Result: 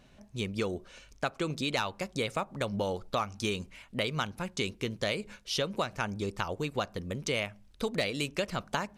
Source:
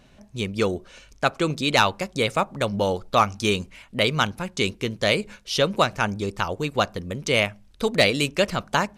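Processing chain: compressor 4:1, threshold -23 dBFS, peak gain reduction 9.5 dB; gain -5 dB

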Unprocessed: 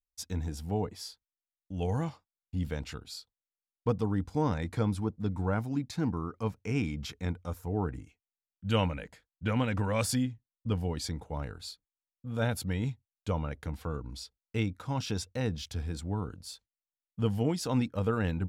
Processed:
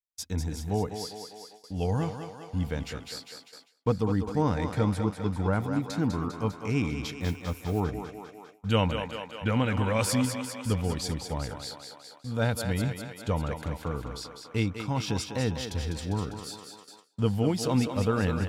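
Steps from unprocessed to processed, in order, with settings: thinning echo 0.2 s, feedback 69%, high-pass 280 Hz, level -6.5 dB; 7.2–7.8 modulation noise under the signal 27 dB; gate with hold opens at -40 dBFS; gain +3 dB

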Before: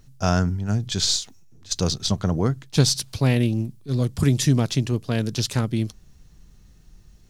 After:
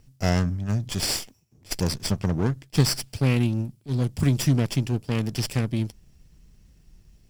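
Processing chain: minimum comb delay 0.38 ms; gain -2.5 dB

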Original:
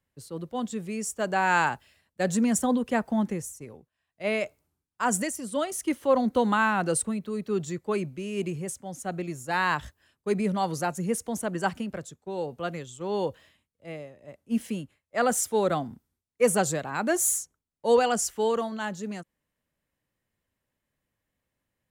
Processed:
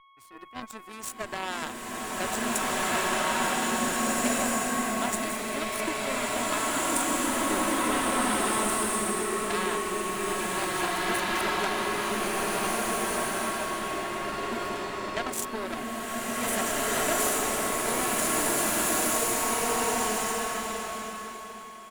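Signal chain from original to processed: high shelf 10000 Hz +10.5 dB; comb 3 ms, depth 93%; whine 1100 Hz -31 dBFS; compressor 6:1, threshold -25 dBFS, peak gain reduction 11 dB; added harmonics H 3 -9 dB, 4 -37 dB, 5 -37 dB, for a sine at -14.5 dBFS; transient shaper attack -2 dB, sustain +6 dB; bloom reverb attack 1.95 s, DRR -10 dB; gain +7 dB

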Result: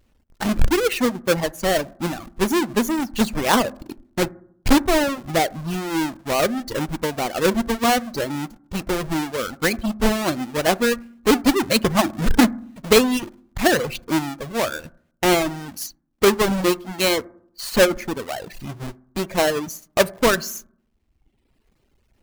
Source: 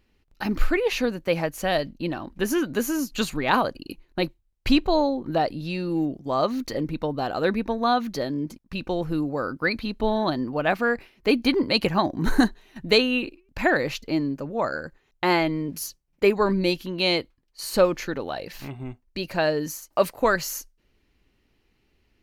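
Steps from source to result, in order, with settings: half-waves squared off; reverb removal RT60 1.1 s; on a send: reverb RT60 0.65 s, pre-delay 4 ms, DRR 18 dB

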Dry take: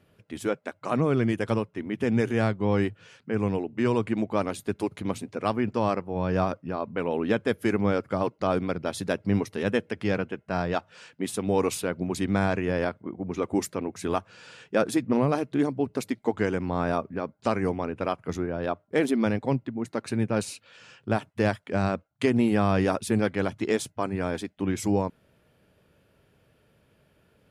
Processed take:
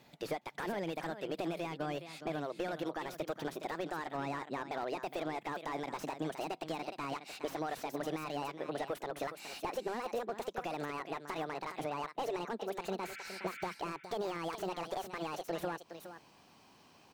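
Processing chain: speed glide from 143% -> 178%; tilt shelf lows -3.5 dB, about 640 Hz; limiter -16.5 dBFS, peak gain reduction 8.5 dB; compressor 6:1, threshold -35 dBFS, peak gain reduction 12.5 dB; spectral repair 13.04–13.71, 1300–3600 Hz before; echo 0.415 s -12 dB; slew limiter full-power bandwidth 21 Hz; gain +1 dB

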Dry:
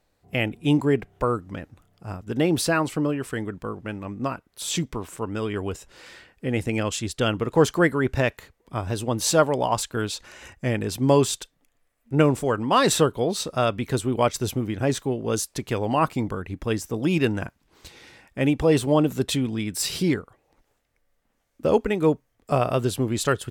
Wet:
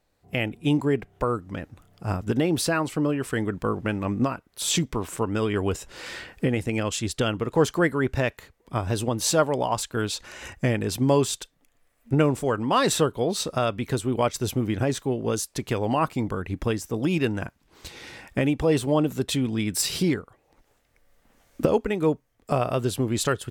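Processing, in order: recorder AGC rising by 11 dB/s; gain -2.5 dB

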